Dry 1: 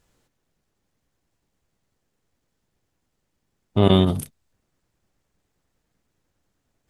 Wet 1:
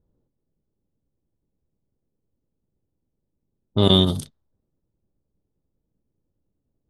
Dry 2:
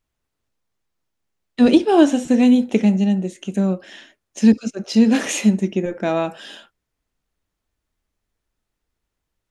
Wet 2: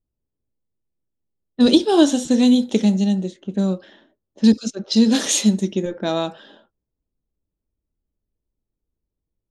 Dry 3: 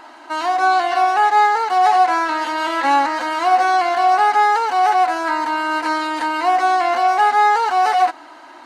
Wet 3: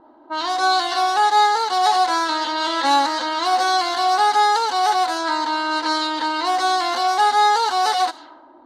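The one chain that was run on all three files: resonant high shelf 3 kHz +6 dB, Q 3; level-controlled noise filter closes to 460 Hz, open at -14.5 dBFS; band-stop 710 Hz, Q 12; trim -1 dB

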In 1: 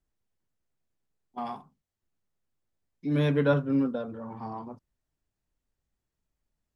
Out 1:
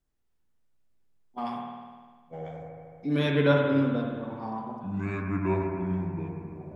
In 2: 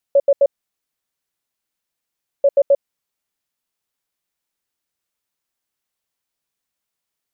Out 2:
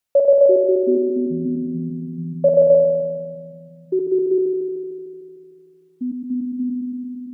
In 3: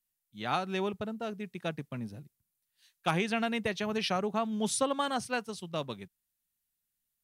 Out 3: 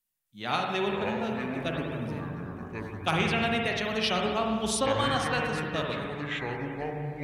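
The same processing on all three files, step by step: dynamic bell 3.4 kHz, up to +5 dB, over -45 dBFS, Q 0.77; spring tank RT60 1.6 s, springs 50 ms, chirp 70 ms, DRR 0.5 dB; ever faster or slower copies 265 ms, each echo -7 st, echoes 3, each echo -6 dB

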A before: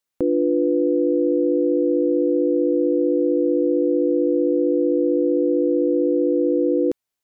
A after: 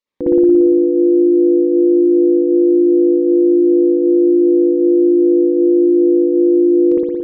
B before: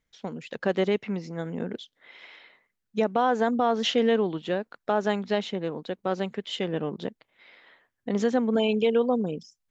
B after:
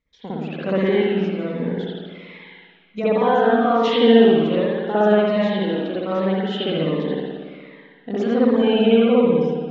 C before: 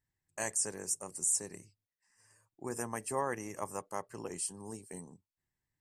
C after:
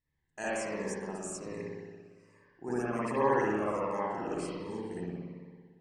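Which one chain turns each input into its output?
low-pass 4.2 kHz 12 dB/octave; peaking EQ 110 Hz -10.5 dB 0.26 oct; spring tank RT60 1.7 s, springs 57 ms, chirp 30 ms, DRR -9 dB; Shepard-style phaser falling 1.3 Hz

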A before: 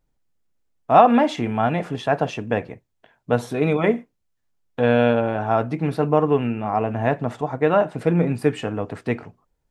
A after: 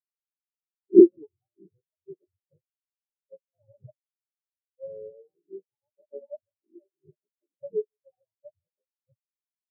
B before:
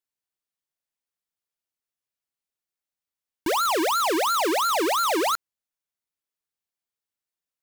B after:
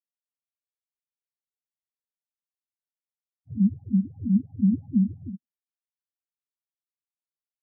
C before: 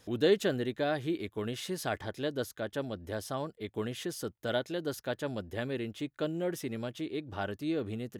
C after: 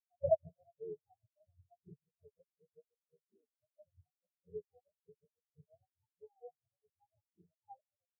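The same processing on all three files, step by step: spectrum inverted on a logarithmic axis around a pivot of 510 Hz; steep low-pass 820 Hz 48 dB/octave; thinning echo 159 ms, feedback 71%, high-pass 190 Hz, level -16.5 dB; spectral contrast expander 4:1; trim -1 dB

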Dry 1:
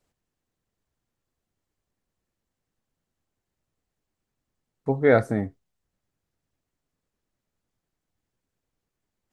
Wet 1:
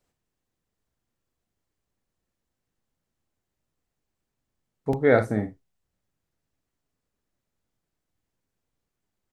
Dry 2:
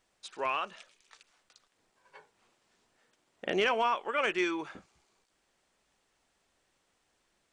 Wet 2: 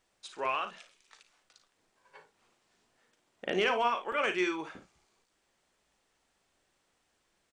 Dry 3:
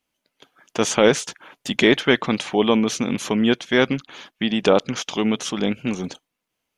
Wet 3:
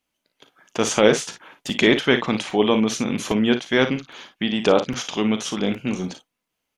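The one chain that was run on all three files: early reflections 38 ms -11.5 dB, 55 ms -11 dB; crackling interface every 0.81 s, samples 128, repeat, from 0.88 s; trim -1 dB

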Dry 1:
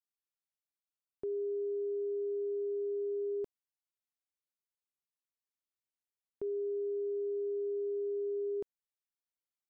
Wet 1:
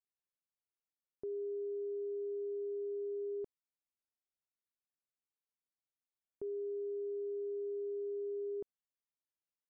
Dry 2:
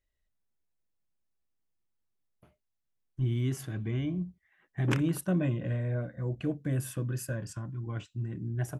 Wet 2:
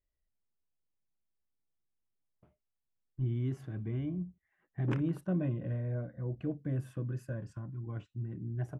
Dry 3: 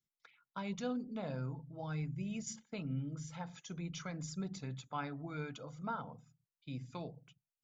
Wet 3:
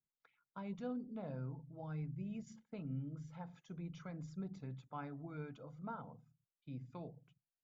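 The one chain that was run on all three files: low-pass 1 kHz 6 dB/octave; trim -3.5 dB

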